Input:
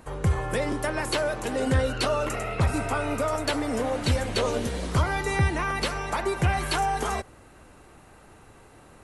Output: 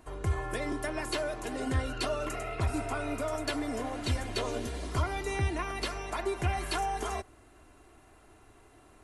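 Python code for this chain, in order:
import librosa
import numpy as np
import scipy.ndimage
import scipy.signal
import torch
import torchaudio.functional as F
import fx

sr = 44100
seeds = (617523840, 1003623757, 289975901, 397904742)

y = x + 0.55 * np.pad(x, (int(2.9 * sr / 1000.0), 0))[:len(x)]
y = y * 10.0 ** (-7.5 / 20.0)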